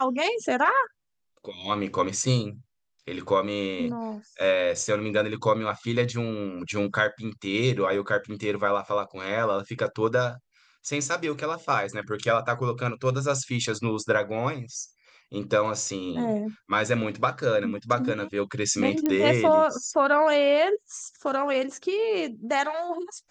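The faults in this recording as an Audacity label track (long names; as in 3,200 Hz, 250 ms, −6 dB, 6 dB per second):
19.060000	19.060000	click −12 dBFS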